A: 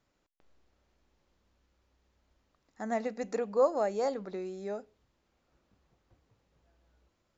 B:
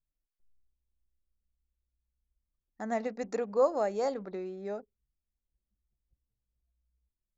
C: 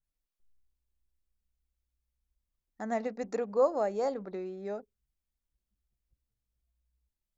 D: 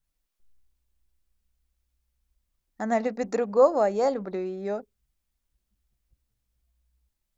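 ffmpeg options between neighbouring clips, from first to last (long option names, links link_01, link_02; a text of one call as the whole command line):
ffmpeg -i in.wav -af "anlmdn=0.00631" out.wav
ffmpeg -i in.wav -af "adynamicequalizer=threshold=0.00562:dfrequency=1500:dqfactor=0.7:tfrequency=1500:tqfactor=0.7:attack=5:release=100:ratio=0.375:range=2:mode=cutabove:tftype=highshelf" out.wav
ffmpeg -i in.wav -af "equalizer=frequency=440:width=5.9:gain=-2,volume=7.5dB" out.wav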